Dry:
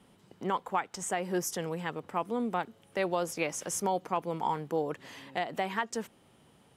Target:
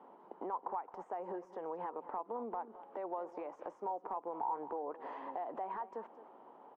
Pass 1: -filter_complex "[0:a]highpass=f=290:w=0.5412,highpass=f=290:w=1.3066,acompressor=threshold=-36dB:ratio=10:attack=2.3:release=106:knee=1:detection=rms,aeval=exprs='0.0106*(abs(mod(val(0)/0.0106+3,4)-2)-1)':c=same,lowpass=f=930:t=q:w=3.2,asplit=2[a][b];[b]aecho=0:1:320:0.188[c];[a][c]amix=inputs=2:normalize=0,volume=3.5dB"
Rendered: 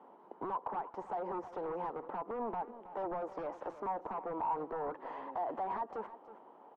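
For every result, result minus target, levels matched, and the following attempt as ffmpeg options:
echo 0.102 s late; compressor: peak gain reduction -7 dB
-filter_complex "[0:a]highpass=f=290:w=0.5412,highpass=f=290:w=1.3066,acompressor=threshold=-36dB:ratio=10:attack=2.3:release=106:knee=1:detection=rms,aeval=exprs='0.0106*(abs(mod(val(0)/0.0106+3,4)-2)-1)':c=same,lowpass=f=930:t=q:w=3.2,asplit=2[a][b];[b]aecho=0:1:218:0.188[c];[a][c]amix=inputs=2:normalize=0,volume=3.5dB"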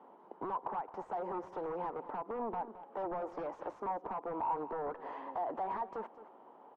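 compressor: peak gain reduction -7 dB
-filter_complex "[0:a]highpass=f=290:w=0.5412,highpass=f=290:w=1.3066,acompressor=threshold=-43.5dB:ratio=10:attack=2.3:release=106:knee=1:detection=rms,aeval=exprs='0.0106*(abs(mod(val(0)/0.0106+3,4)-2)-1)':c=same,lowpass=f=930:t=q:w=3.2,asplit=2[a][b];[b]aecho=0:1:218:0.188[c];[a][c]amix=inputs=2:normalize=0,volume=3.5dB"

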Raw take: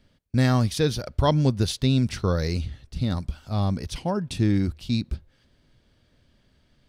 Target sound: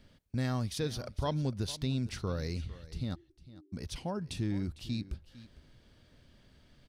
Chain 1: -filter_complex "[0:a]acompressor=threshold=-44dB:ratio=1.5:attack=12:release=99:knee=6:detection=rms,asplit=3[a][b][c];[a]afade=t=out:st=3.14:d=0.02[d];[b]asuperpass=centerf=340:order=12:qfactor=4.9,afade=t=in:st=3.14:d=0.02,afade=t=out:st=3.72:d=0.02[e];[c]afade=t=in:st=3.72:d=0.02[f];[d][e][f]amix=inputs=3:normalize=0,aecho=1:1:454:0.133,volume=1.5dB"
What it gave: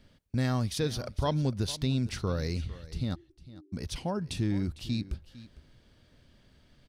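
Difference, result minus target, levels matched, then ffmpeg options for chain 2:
compressor: peak gain reduction -4 dB
-filter_complex "[0:a]acompressor=threshold=-56dB:ratio=1.5:attack=12:release=99:knee=6:detection=rms,asplit=3[a][b][c];[a]afade=t=out:st=3.14:d=0.02[d];[b]asuperpass=centerf=340:order=12:qfactor=4.9,afade=t=in:st=3.14:d=0.02,afade=t=out:st=3.72:d=0.02[e];[c]afade=t=in:st=3.72:d=0.02[f];[d][e][f]amix=inputs=3:normalize=0,aecho=1:1:454:0.133,volume=1.5dB"

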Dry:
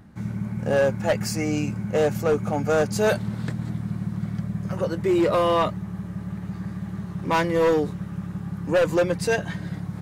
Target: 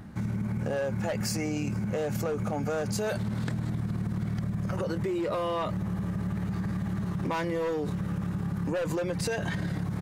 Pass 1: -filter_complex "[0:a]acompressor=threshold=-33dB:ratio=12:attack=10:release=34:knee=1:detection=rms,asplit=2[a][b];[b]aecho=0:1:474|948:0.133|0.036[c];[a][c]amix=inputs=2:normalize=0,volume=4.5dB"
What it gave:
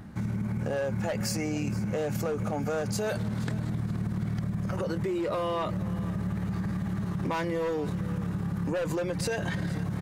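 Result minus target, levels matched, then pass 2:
echo-to-direct +9.5 dB
-filter_complex "[0:a]acompressor=threshold=-33dB:ratio=12:attack=10:release=34:knee=1:detection=rms,asplit=2[a][b];[b]aecho=0:1:474|948:0.0447|0.0121[c];[a][c]amix=inputs=2:normalize=0,volume=4.5dB"

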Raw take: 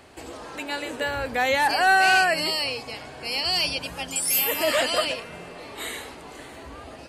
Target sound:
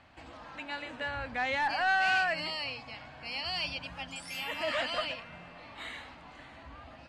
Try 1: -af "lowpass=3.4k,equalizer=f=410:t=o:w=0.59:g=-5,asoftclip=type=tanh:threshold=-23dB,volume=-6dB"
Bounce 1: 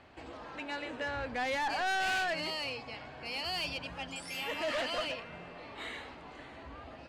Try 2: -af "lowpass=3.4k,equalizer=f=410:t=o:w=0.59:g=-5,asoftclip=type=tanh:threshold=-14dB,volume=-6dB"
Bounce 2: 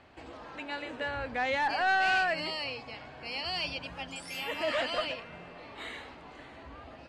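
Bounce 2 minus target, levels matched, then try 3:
500 Hz band +3.0 dB
-af "lowpass=3.4k,equalizer=f=410:t=o:w=0.59:g=-16.5,asoftclip=type=tanh:threshold=-14dB,volume=-6dB"

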